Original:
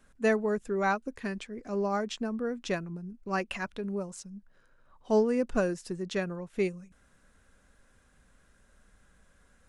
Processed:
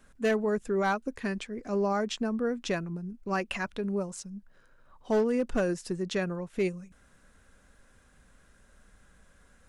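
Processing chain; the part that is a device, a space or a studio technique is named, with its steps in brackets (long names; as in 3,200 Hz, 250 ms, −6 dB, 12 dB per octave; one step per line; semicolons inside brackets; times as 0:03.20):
clipper into limiter (hard clipping −20.5 dBFS, distortion −18 dB; brickwall limiter −23.5 dBFS, peak gain reduction 3 dB)
level +3 dB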